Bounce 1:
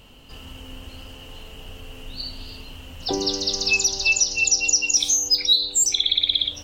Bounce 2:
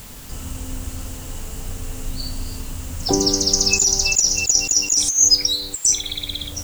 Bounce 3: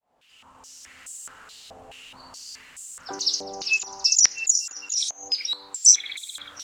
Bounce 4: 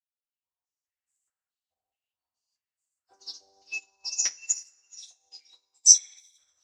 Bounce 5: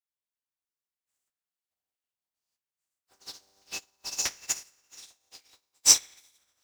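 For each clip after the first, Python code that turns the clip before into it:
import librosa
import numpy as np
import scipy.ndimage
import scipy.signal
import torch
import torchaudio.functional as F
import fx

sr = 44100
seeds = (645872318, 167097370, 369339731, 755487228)

y1 = fx.curve_eq(x, sr, hz=(190.0, 450.0, 1400.0, 3600.0, 7400.0, 15000.0), db=(0, -7, -6, -20, 10, -10))
y1 = fx.over_compress(y1, sr, threshold_db=-21.0, ratio=-0.5)
y1 = fx.quant_dither(y1, sr, seeds[0], bits=8, dither='triangular')
y1 = F.gain(torch.from_numpy(y1), 6.5).numpy()
y2 = fx.fade_in_head(y1, sr, length_s=1.02)
y2 = fx.rider(y2, sr, range_db=5, speed_s=2.0)
y2 = fx.filter_held_bandpass(y2, sr, hz=4.7, low_hz=720.0, high_hz=7800.0)
y2 = F.gain(torch.from_numpy(y2), 4.0).numpy()
y3 = fx.peak_eq(y2, sr, hz=720.0, db=2.5, octaves=0.77)
y3 = fx.rev_double_slope(y3, sr, seeds[1], early_s=0.24, late_s=3.4, knee_db=-20, drr_db=-8.0)
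y3 = fx.upward_expand(y3, sr, threshold_db=-37.0, expansion=2.5)
y3 = F.gain(torch.from_numpy(y3), -7.5).numpy()
y4 = fx.spec_flatten(y3, sr, power=0.43)
y4 = F.gain(torch.from_numpy(y4), -3.0).numpy()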